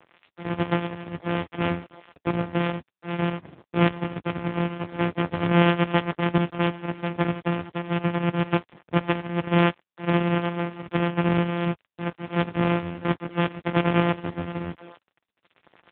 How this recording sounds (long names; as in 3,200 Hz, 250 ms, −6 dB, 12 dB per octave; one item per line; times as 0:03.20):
a buzz of ramps at a fixed pitch in blocks of 256 samples
sample-and-hold tremolo
a quantiser's noise floor 8 bits, dither none
AMR narrowband